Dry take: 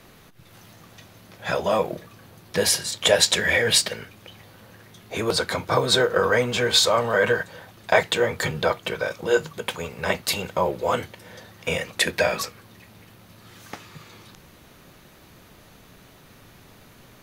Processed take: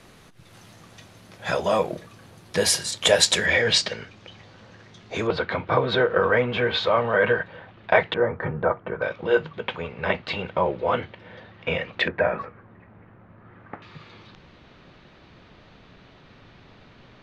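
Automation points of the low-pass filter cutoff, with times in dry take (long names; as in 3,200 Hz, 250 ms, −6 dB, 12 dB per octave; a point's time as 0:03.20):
low-pass filter 24 dB per octave
11,000 Hz
from 0:03.46 6,200 Hz
from 0:05.27 3,100 Hz
from 0:08.14 1,600 Hz
from 0:09.02 3,300 Hz
from 0:12.08 1,800 Hz
from 0:13.82 4,300 Hz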